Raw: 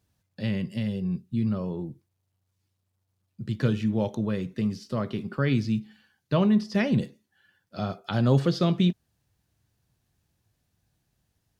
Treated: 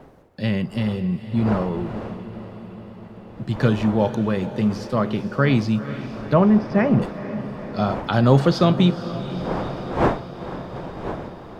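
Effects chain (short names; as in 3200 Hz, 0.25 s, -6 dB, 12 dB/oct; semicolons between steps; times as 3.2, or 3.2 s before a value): wind noise 540 Hz -40 dBFS; dynamic EQ 960 Hz, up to +6 dB, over -42 dBFS, Q 0.75; 6.33–7.02 running mean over 12 samples; diffused feedback echo 0.48 s, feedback 67%, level -13 dB; gain +5 dB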